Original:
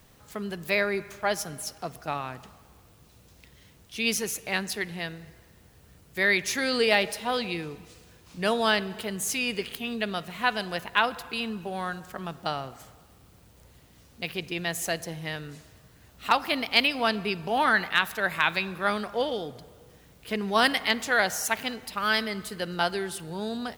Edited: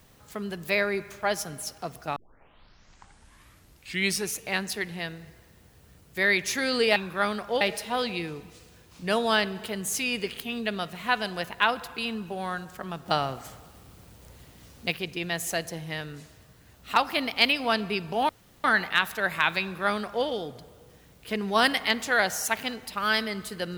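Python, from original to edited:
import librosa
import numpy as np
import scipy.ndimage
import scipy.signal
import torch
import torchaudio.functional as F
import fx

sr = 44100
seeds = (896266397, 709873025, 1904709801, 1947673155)

y = fx.edit(x, sr, fx.tape_start(start_s=2.16, length_s=2.22),
    fx.clip_gain(start_s=12.41, length_s=1.86, db=5.0),
    fx.insert_room_tone(at_s=17.64, length_s=0.35),
    fx.duplicate(start_s=18.61, length_s=0.65, to_s=6.96), tone=tone)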